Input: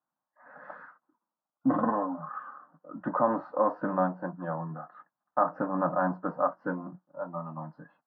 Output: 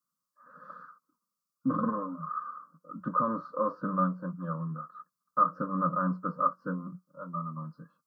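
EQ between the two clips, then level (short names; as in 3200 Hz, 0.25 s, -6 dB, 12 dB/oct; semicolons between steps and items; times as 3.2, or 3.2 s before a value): EQ curve 130 Hz 0 dB, 180 Hz +4 dB, 350 Hz -9 dB, 520 Hz -2 dB, 780 Hz -29 dB, 1200 Hz +7 dB, 2000 Hz -21 dB, 4700 Hz +8 dB; 0.0 dB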